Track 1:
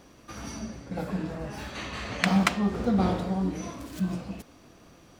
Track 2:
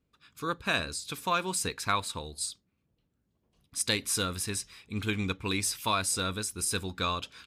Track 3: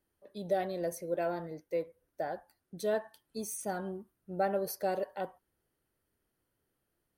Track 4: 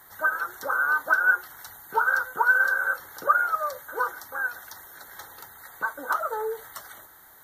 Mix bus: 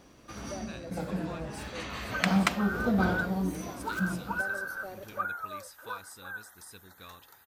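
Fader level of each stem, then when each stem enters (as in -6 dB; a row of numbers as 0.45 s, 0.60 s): -2.5 dB, -19.5 dB, -11.5 dB, -12.5 dB; 0.00 s, 0.00 s, 0.00 s, 1.90 s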